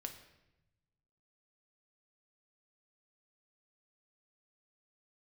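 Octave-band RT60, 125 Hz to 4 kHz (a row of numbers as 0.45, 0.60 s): 1.8, 1.3, 1.0, 0.85, 0.90, 0.75 s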